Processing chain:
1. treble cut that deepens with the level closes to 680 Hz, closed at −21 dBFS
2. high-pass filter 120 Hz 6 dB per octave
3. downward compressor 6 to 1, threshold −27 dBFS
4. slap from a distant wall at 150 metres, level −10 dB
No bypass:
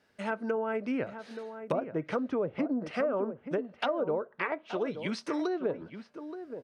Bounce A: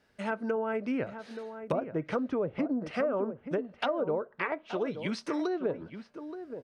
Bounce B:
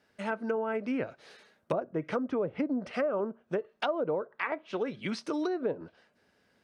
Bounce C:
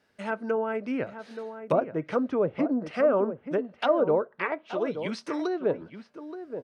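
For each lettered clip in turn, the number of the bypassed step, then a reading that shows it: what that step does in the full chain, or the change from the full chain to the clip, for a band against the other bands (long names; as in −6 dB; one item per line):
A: 2, 125 Hz band +1.5 dB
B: 4, echo-to-direct ratio −12.5 dB to none audible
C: 3, average gain reduction 3.0 dB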